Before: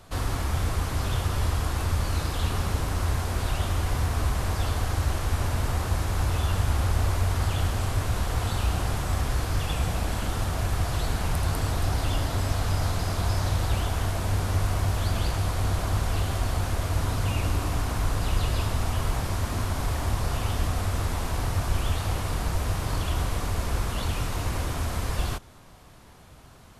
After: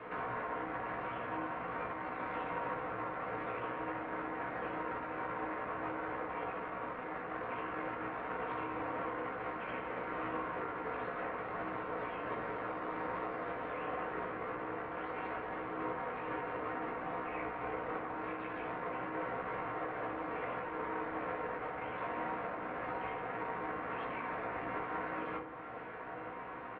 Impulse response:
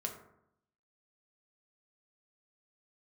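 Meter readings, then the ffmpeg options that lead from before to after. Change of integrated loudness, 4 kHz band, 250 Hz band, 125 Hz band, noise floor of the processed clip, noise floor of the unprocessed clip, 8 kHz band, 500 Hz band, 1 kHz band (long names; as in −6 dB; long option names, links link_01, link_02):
−12.0 dB, −23.5 dB, −8.5 dB, −28.0 dB, −44 dBFS, −49 dBFS, below −40 dB, −4.0 dB, −4.0 dB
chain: -filter_complex "[0:a]equalizer=frequency=640:width=1.9:gain=-6.5,bandreject=frequency=1100:width=8.6,acompressor=threshold=-42dB:ratio=2.5,asoftclip=type=tanh:threshold=-36.5dB,highpass=frequency=530:width_type=q:width=0.5412,highpass=frequency=530:width_type=q:width=1.307,lowpass=frequency=2400:width_type=q:width=0.5176,lowpass=frequency=2400:width_type=q:width=0.7071,lowpass=frequency=2400:width_type=q:width=1.932,afreqshift=-260,asplit=2[link_01][link_02];[link_02]adelay=16,volume=-5dB[link_03];[link_01][link_03]amix=inputs=2:normalize=0[link_04];[1:a]atrim=start_sample=2205,asetrate=32193,aresample=44100[link_05];[link_04][link_05]afir=irnorm=-1:irlink=0,volume=11.5dB"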